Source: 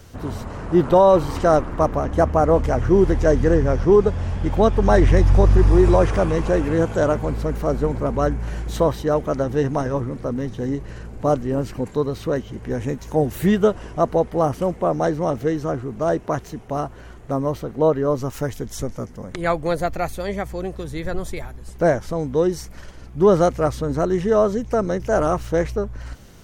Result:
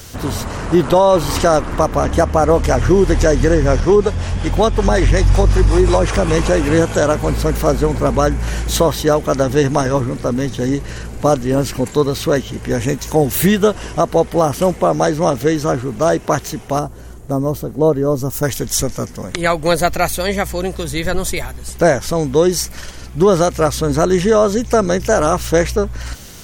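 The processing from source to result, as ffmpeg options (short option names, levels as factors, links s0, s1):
-filter_complex "[0:a]asettb=1/sr,asplit=3[s0][s1][s2];[s0]atrim=end=3.804[s3];[s1]atrim=start=3.8:end=6.28,asetpts=PTS-STARTPTS,afade=t=in:d=0.004:c=qsin,afade=t=out:st=2.476:d=0.004:c=qsin,acrossover=split=450[s4][s5];[s4]aeval=exprs='val(0)*(1-0.5/2+0.5/2*cos(2*PI*5.4*n/s))':c=same[s6];[s5]aeval=exprs='val(0)*(1-0.5/2-0.5/2*cos(2*PI*5.4*n/s))':c=same[s7];[s6][s7]amix=inputs=2:normalize=0[s8];[s2]atrim=start=6.276[s9];[s3][s8]acrossfade=d=0.004:c1=hsin:c2=qsin[s10];[s10][s9]acrossfade=d=0.004:c1=qsin:c2=hsin,asettb=1/sr,asplit=3[s11][s12][s13];[s11]atrim=end=16.794[s14];[s12]atrim=start=16.79:end=18.43,asetpts=PTS-STARTPTS,afade=t=in:d=0.004:c=qsin,afade=t=out:st=1.636:d=0.004:c=qsin,equalizer=f=2500:t=o:w=2.9:g=-14[s15];[s13]atrim=start=18.426[s16];[s14][s15]acrossfade=d=0.004:c1=hsin:c2=qsin[s17];[s17][s16]acrossfade=d=0.004:c1=qsin:c2=hsin,highshelf=f=2300:g=12,alimiter=limit=0.335:level=0:latency=1:release=188,volume=2.11"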